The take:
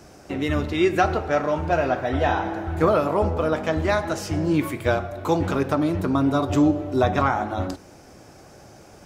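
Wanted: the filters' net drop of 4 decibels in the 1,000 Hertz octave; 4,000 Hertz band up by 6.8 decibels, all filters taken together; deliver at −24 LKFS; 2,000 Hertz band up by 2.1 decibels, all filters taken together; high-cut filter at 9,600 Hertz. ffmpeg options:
ffmpeg -i in.wav -af "lowpass=9600,equalizer=frequency=1000:width_type=o:gain=-7.5,equalizer=frequency=2000:width_type=o:gain=4,equalizer=frequency=4000:width_type=o:gain=7.5,volume=-0.5dB" out.wav

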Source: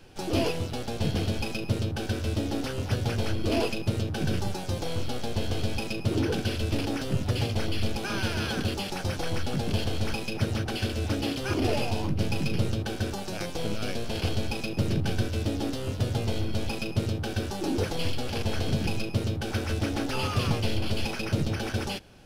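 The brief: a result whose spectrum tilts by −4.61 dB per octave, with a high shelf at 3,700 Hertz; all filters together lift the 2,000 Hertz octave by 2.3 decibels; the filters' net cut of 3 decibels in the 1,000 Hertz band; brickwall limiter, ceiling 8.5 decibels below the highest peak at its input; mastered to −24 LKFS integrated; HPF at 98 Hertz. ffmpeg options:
ffmpeg -i in.wav -af "highpass=98,equalizer=frequency=1000:width_type=o:gain=-5.5,equalizer=frequency=2000:width_type=o:gain=6.5,highshelf=frequency=3700:gain=-5,volume=9dB,alimiter=limit=-14dB:level=0:latency=1" out.wav

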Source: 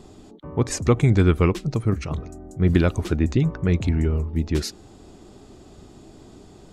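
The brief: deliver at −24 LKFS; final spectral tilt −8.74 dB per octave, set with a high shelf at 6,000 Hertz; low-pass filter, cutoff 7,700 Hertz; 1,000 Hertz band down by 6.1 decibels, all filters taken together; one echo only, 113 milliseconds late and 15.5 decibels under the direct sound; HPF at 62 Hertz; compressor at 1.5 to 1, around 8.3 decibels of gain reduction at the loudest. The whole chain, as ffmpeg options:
ffmpeg -i in.wav -af "highpass=62,lowpass=7700,equalizer=frequency=1000:width_type=o:gain=-8,highshelf=frequency=6000:gain=-7,acompressor=threshold=-37dB:ratio=1.5,aecho=1:1:113:0.168,volume=6.5dB" out.wav

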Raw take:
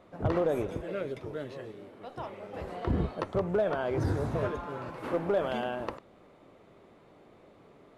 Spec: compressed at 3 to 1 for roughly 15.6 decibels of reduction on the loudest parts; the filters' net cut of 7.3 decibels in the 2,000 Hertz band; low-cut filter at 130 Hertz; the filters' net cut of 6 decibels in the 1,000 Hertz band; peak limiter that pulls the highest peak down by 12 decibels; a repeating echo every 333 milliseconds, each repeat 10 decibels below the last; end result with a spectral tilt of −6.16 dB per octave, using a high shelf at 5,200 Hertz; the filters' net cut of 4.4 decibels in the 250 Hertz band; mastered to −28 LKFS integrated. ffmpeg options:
ffmpeg -i in.wav -af "highpass=130,equalizer=frequency=250:width_type=o:gain=-5.5,equalizer=frequency=1000:width_type=o:gain=-6.5,equalizer=frequency=2000:width_type=o:gain=-6.5,highshelf=frequency=5200:gain=-6,acompressor=threshold=-49dB:ratio=3,alimiter=level_in=22.5dB:limit=-24dB:level=0:latency=1,volume=-22.5dB,aecho=1:1:333|666|999|1332:0.316|0.101|0.0324|0.0104,volume=27.5dB" out.wav

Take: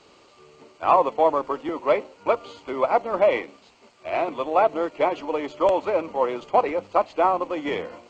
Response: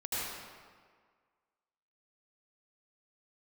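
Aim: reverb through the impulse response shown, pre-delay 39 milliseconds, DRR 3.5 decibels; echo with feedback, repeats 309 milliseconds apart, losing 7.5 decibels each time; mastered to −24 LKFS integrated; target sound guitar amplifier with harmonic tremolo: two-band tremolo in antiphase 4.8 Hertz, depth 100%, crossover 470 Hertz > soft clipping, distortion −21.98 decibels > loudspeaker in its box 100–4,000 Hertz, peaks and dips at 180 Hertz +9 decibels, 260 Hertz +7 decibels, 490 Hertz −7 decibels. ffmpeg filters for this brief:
-filter_complex "[0:a]aecho=1:1:309|618|927|1236|1545:0.422|0.177|0.0744|0.0312|0.0131,asplit=2[link_01][link_02];[1:a]atrim=start_sample=2205,adelay=39[link_03];[link_02][link_03]afir=irnorm=-1:irlink=0,volume=-9dB[link_04];[link_01][link_04]amix=inputs=2:normalize=0,acrossover=split=470[link_05][link_06];[link_05]aeval=exprs='val(0)*(1-1/2+1/2*cos(2*PI*4.8*n/s))':channel_layout=same[link_07];[link_06]aeval=exprs='val(0)*(1-1/2-1/2*cos(2*PI*4.8*n/s))':channel_layout=same[link_08];[link_07][link_08]amix=inputs=2:normalize=0,asoftclip=threshold=-10.5dB,highpass=100,equalizer=frequency=180:width_type=q:width=4:gain=9,equalizer=frequency=260:width_type=q:width=4:gain=7,equalizer=frequency=490:width_type=q:width=4:gain=-7,lowpass=frequency=4000:width=0.5412,lowpass=frequency=4000:width=1.3066,volume=3.5dB"

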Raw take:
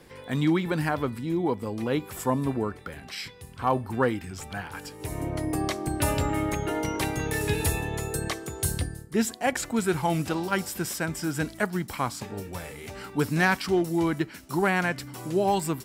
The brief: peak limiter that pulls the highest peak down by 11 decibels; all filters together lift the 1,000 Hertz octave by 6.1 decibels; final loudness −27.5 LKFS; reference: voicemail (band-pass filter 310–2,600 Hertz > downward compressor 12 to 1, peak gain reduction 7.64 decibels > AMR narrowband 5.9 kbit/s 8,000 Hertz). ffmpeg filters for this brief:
ffmpeg -i in.wav -af "equalizer=frequency=1000:width_type=o:gain=8,alimiter=limit=-17.5dB:level=0:latency=1,highpass=310,lowpass=2600,acompressor=threshold=-29dB:ratio=12,volume=9.5dB" -ar 8000 -c:a libopencore_amrnb -b:a 5900 out.amr

